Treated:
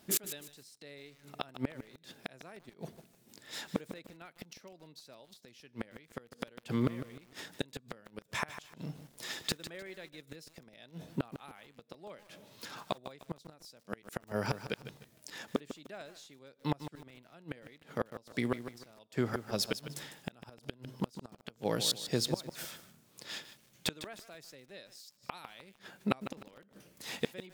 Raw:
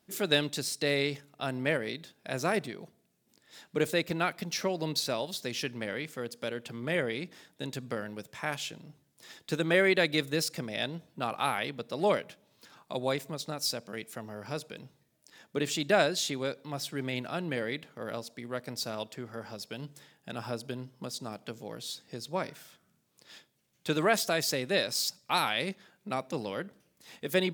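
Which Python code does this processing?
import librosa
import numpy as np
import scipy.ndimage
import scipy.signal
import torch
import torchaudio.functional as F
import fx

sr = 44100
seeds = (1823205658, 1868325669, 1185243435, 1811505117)

y = fx.gate_flip(x, sr, shuts_db=-27.0, range_db=-32)
y = fx.echo_crushed(y, sr, ms=152, feedback_pct=35, bits=10, wet_db=-11)
y = y * 10.0 ** (9.5 / 20.0)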